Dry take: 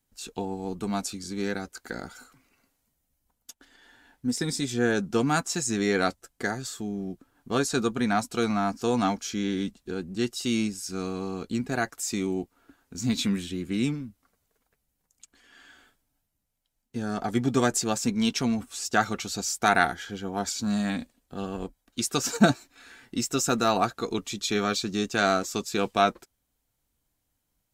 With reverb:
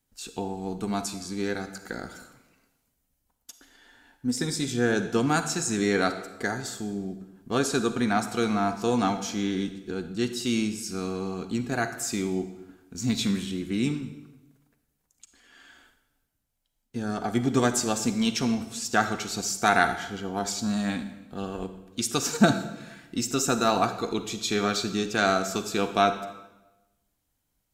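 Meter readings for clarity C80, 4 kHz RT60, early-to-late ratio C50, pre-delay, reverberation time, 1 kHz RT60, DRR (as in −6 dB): 12.0 dB, 0.85 s, 10.0 dB, 34 ms, 1.0 s, 1.0 s, 9.0 dB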